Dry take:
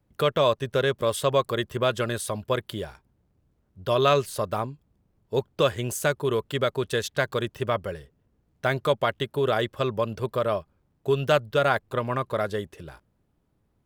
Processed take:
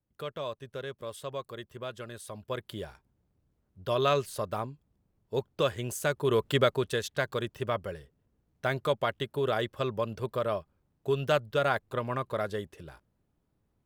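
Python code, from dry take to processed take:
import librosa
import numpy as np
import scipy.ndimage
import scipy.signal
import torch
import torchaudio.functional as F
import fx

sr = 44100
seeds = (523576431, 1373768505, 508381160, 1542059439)

y = fx.gain(x, sr, db=fx.line((2.11, -15.0), (2.83, -5.5), (6.04, -5.5), (6.52, 2.5), (7.0, -5.0)))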